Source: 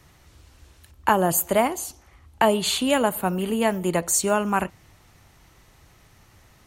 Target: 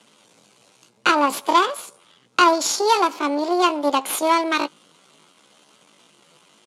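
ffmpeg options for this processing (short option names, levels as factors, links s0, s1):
-filter_complex "[0:a]aeval=exprs='if(lt(val(0),0),0.251*val(0),val(0))':c=same,equalizer=f=2600:w=0.56:g=3,asetrate=70004,aresample=44100,atempo=0.629961,highpass=f=220:w=0.5412,highpass=f=220:w=1.3066,equalizer=f=240:t=q:w=4:g=-6,equalizer=f=1000:t=q:w=4:g=3,equalizer=f=1800:t=q:w=4:g=-9,equalizer=f=5000:t=q:w=4:g=-4,lowpass=f=9800:w=0.5412,lowpass=f=9800:w=1.3066,asplit=2[s0][s1];[s1]adelay=14,volume=0.224[s2];[s0][s2]amix=inputs=2:normalize=0,volume=2"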